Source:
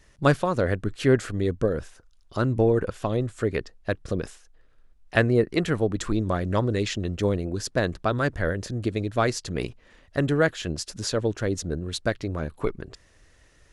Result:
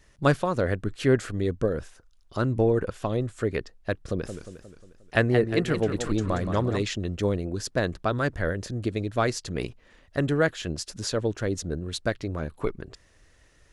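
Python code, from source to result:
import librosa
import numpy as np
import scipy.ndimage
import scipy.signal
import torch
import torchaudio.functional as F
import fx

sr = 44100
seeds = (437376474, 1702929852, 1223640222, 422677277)

y = fx.echo_warbled(x, sr, ms=178, feedback_pct=53, rate_hz=2.8, cents=161, wet_db=-8.5, at=(4.08, 6.82))
y = y * 10.0 ** (-1.5 / 20.0)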